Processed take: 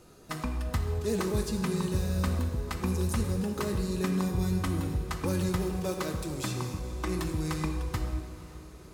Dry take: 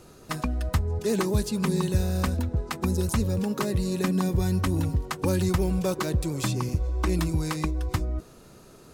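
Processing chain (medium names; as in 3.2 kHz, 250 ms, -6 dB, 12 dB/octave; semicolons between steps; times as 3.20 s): 5.58–7.25 s: bass shelf 160 Hz -6 dB; echo that smears into a reverb 521 ms, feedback 56%, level -16 dB; gated-style reverb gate 470 ms falling, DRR 4 dB; trim -5.5 dB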